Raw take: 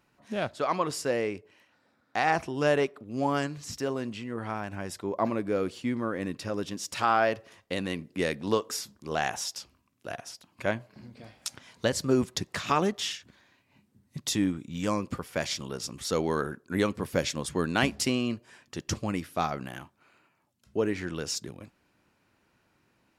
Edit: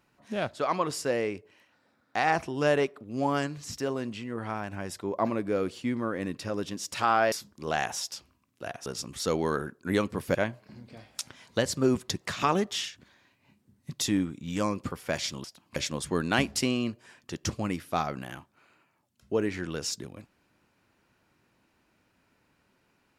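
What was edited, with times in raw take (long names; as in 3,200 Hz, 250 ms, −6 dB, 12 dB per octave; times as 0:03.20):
0:07.32–0:08.76: remove
0:10.30–0:10.62: swap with 0:15.71–0:17.20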